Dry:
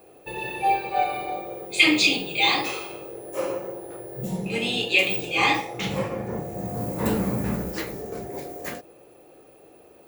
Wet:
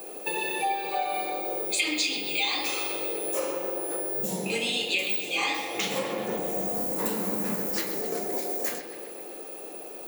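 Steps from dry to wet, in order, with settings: HPF 190 Hz 24 dB/oct; tone controls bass -4 dB, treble +9 dB; compressor 5:1, threshold -36 dBFS, peak gain reduction 22 dB; analogue delay 0.128 s, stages 4096, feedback 67%, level -9.5 dB; gain +8.5 dB

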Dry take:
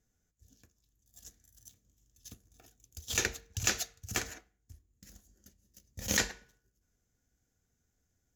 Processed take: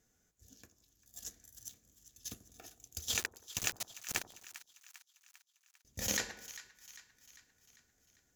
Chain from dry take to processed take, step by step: low shelf 150 Hz -10.5 dB; compressor 5:1, threshold -39 dBFS, peak gain reduction 14 dB; 3.18–5.85 sample gate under -38.5 dBFS; split-band echo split 1000 Hz, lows 88 ms, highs 0.398 s, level -14.5 dB; gain +6.5 dB

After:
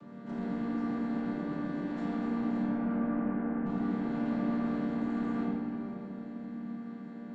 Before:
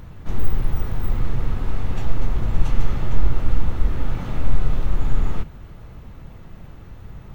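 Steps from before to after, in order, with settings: chord vocoder minor triad, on G3; 1.28–1.87 notch comb 230 Hz; 2.63–3.66 elliptic band-pass 150–1800 Hz; soft clip -29 dBFS, distortion -13 dB; shoebox room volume 130 m³, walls hard, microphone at 0.81 m; gain -5.5 dB

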